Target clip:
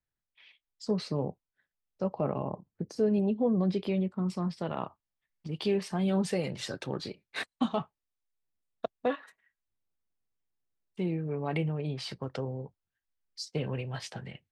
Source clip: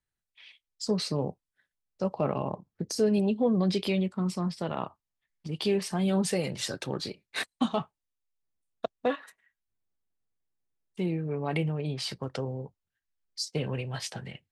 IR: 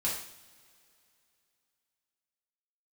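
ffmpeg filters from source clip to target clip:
-af "asetnsamples=nb_out_samples=441:pad=0,asendcmd='2.2 lowpass f 1200;4.3 lowpass f 3600',lowpass=frequency=2200:poles=1,volume=-1.5dB"

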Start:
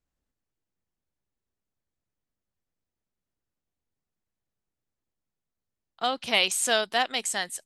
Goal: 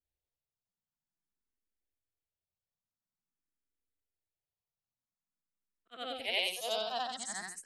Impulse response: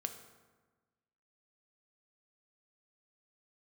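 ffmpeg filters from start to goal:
-filter_complex "[0:a]afftfilt=real='re':imag='-im':win_size=8192:overlap=0.75,asplit=2[link_01][link_02];[link_02]afreqshift=0.48[link_03];[link_01][link_03]amix=inputs=2:normalize=1,volume=-3.5dB"

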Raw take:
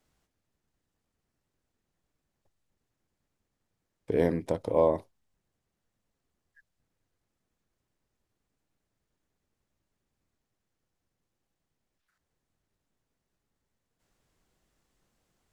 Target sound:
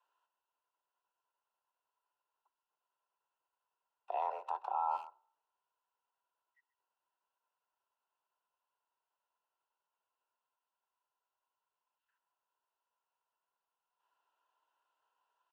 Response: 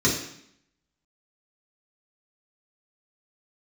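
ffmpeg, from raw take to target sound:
-filter_complex "[0:a]asplit=3[link_01][link_02][link_03];[link_01]bandpass=frequency=730:width_type=q:width=8,volume=0dB[link_04];[link_02]bandpass=frequency=1090:width_type=q:width=8,volume=-6dB[link_05];[link_03]bandpass=frequency=2440:width_type=q:width=8,volume=-9dB[link_06];[link_04][link_05][link_06]amix=inputs=3:normalize=0,afreqshift=270,asplit=2[link_07][link_08];[1:a]atrim=start_sample=2205[link_09];[link_08][link_09]afir=irnorm=-1:irlink=0,volume=-37.5dB[link_10];[link_07][link_10]amix=inputs=2:normalize=0,acontrast=78,asplit=2[link_11][link_12];[link_12]adelay=130,highpass=300,lowpass=3400,asoftclip=type=hard:threshold=-24.5dB,volume=-19dB[link_13];[link_11][link_13]amix=inputs=2:normalize=0,alimiter=level_in=1dB:limit=-24dB:level=0:latency=1:release=77,volume=-1dB"

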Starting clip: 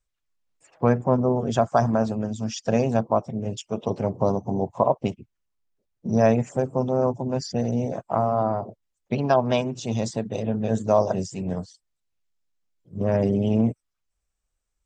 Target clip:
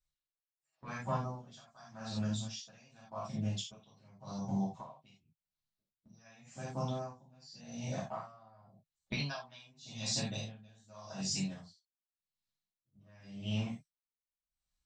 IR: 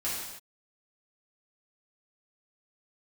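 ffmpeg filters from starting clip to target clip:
-filter_complex "[0:a]agate=range=-8dB:threshold=-39dB:ratio=16:detection=peak,equalizer=frequency=160:width_type=o:width=0.67:gain=10,equalizer=frequency=400:width_type=o:width=0.67:gain=-9,equalizer=frequency=4000:width_type=o:width=0.67:gain=11,acrossover=split=1300[link_01][link_02];[link_01]acompressor=threshold=-33dB:ratio=16[link_03];[link_03][link_02]amix=inputs=2:normalize=0[link_04];[1:a]atrim=start_sample=2205,atrim=end_sample=4410[link_05];[link_04][link_05]afir=irnorm=-1:irlink=0,aeval=exprs='val(0)*pow(10,-28*(0.5-0.5*cos(2*PI*0.88*n/s))/20)':channel_layout=same,volume=-3.5dB"

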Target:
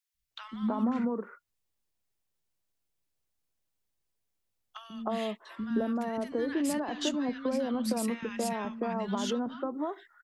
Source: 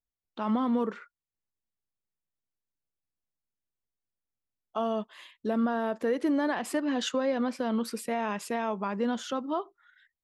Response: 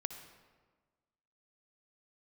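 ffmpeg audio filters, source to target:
-filter_complex "[0:a]acrossover=split=190[link_01][link_02];[link_02]acompressor=threshold=-38dB:ratio=6[link_03];[link_01][link_03]amix=inputs=2:normalize=0,acrossover=split=220|1400[link_04][link_05][link_06];[link_04]adelay=140[link_07];[link_05]adelay=310[link_08];[link_07][link_08][link_06]amix=inputs=3:normalize=0,volume=8dB"

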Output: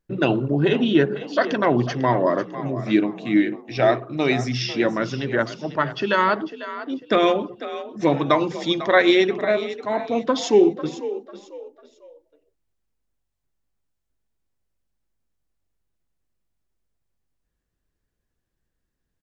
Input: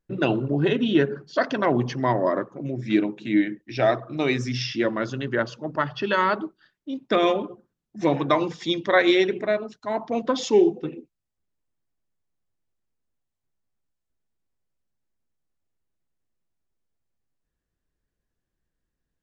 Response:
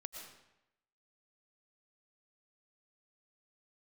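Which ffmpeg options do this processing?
-filter_complex "[0:a]asplit=4[link_01][link_02][link_03][link_04];[link_02]adelay=497,afreqshift=47,volume=-13.5dB[link_05];[link_03]adelay=994,afreqshift=94,volume=-23.1dB[link_06];[link_04]adelay=1491,afreqshift=141,volume=-32.8dB[link_07];[link_01][link_05][link_06][link_07]amix=inputs=4:normalize=0,volume=2.5dB"

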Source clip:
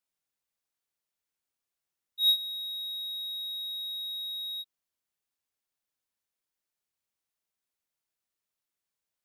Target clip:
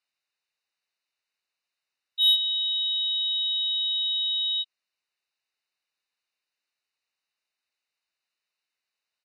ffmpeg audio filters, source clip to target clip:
ffmpeg -i in.wav -filter_complex "[0:a]equalizer=frequency=3500:width_type=o:width=1.3:gain=11,asplit=2[link_01][link_02];[link_02]highpass=frequency=720:poles=1,volume=14dB,asoftclip=type=tanh:threshold=-5.5dB[link_03];[link_01][link_03]amix=inputs=2:normalize=0,lowpass=frequency=3600:poles=1,volume=-6dB,lowpass=12000,equalizer=frequency=7500:width_type=o:width=0.52:gain=-3,asplit=3[link_04][link_05][link_06];[link_05]asetrate=35002,aresample=44100,atempo=1.25992,volume=-7dB[link_07];[link_06]asetrate=37084,aresample=44100,atempo=1.18921,volume=-16dB[link_08];[link_04][link_07][link_08]amix=inputs=3:normalize=0,asuperstop=centerf=3300:order=8:qfactor=5.7,volume=-6.5dB" out.wav

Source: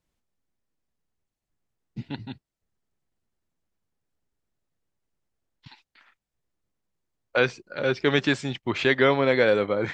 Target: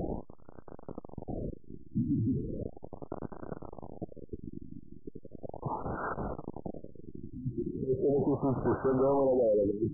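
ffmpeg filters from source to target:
ffmpeg -i in.wav -filter_complex "[0:a]aeval=exprs='val(0)+0.5*0.0398*sgn(val(0))':channel_layout=same,equalizer=frequency=1400:width_type=o:width=1.9:gain=-13.5,asplit=2[link_01][link_02];[link_02]highpass=frequency=720:poles=1,volume=38dB,asoftclip=type=tanh:threshold=-11dB[link_03];[link_01][link_03]amix=inputs=2:normalize=0,lowpass=frequency=1400:poles=1,volume=-6dB,afftfilt=real='re*lt(b*sr/1024,340*pow(1600/340,0.5+0.5*sin(2*PI*0.37*pts/sr)))':imag='im*lt(b*sr/1024,340*pow(1600/340,0.5+0.5*sin(2*PI*0.37*pts/sr)))':win_size=1024:overlap=0.75,volume=-8.5dB" out.wav

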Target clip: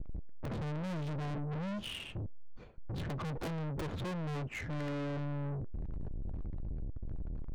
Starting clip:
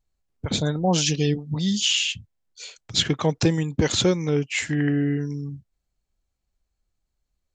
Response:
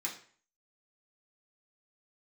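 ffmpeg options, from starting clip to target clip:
-filter_complex "[0:a]aeval=exprs='val(0)+0.5*0.0316*sgn(val(0))':channel_layout=same,aemphasis=mode=reproduction:type=riaa,agate=range=-33dB:threshold=-26dB:ratio=3:detection=peak,equalizer=frequency=3600:width_type=o:width=2:gain=-6,adynamicsmooth=sensitivity=3:basefreq=1100,aeval=exprs='(mod(1.58*val(0)+1,2)-1)/1.58':channel_layout=same,aeval=exprs='(tanh(35.5*val(0)+0.2)-tanh(0.2))/35.5':channel_layout=same,asplit=2[link_01][link_02];[1:a]atrim=start_sample=2205,asetrate=88200,aresample=44100,lowpass=3700[link_03];[link_02][link_03]afir=irnorm=-1:irlink=0,volume=-10dB[link_04];[link_01][link_04]amix=inputs=2:normalize=0,volume=-5dB"

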